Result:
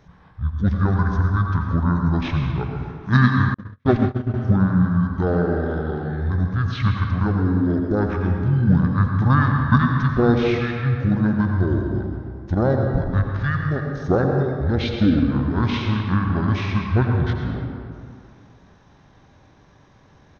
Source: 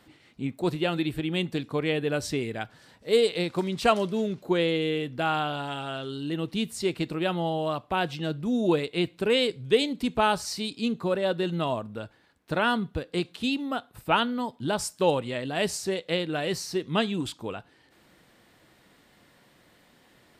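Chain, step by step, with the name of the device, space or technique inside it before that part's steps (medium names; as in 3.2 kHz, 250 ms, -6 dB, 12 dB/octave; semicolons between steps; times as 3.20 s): monster voice (pitch shift -10 st; formant shift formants -4.5 st; bass shelf 200 Hz +6 dB; reverberation RT60 2.3 s, pre-delay 79 ms, DRR 1.5 dB); 3.54–4.34 s: gate -19 dBFS, range -46 dB; trim +3.5 dB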